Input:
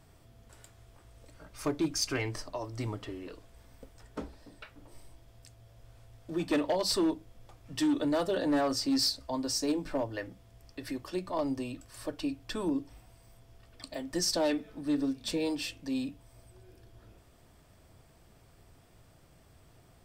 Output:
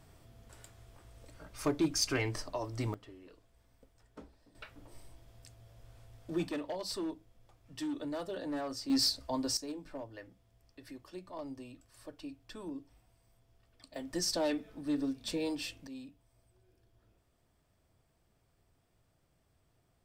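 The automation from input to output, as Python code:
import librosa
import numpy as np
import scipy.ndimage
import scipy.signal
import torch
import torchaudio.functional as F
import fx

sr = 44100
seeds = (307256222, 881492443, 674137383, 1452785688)

y = fx.gain(x, sr, db=fx.steps((0.0, 0.0), (2.94, -12.0), (4.55, -1.0), (6.49, -9.5), (8.9, -1.0), (9.57, -11.5), (13.96, -3.5), (15.87, -13.5)))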